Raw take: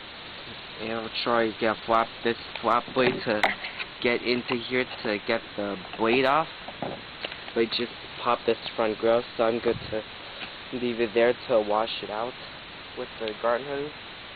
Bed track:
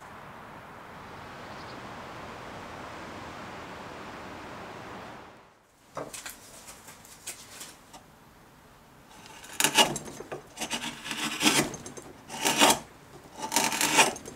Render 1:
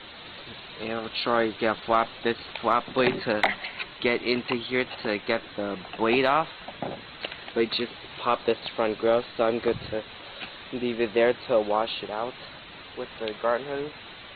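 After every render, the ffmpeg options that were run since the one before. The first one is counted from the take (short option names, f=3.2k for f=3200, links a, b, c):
-af "afftdn=nr=6:nf=-42"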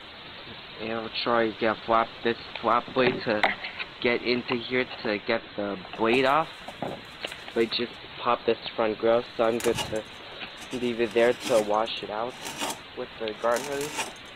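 -filter_complex "[1:a]volume=-11dB[a];[0:a][a]amix=inputs=2:normalize=0"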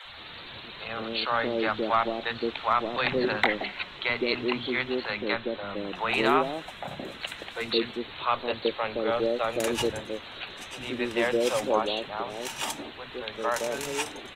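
-filter_complex "[0:a]acrossover=split=190|580[a][b][c];[a]adelay=50[d];[b]adelay=170[e];[d][e][c]amix=inputs=3:normalize=0"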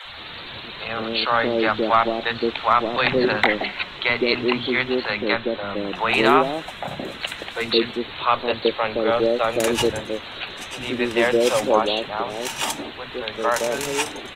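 -af "volume=7dB,alimiter=limit=-2dB:level=0:latency=1"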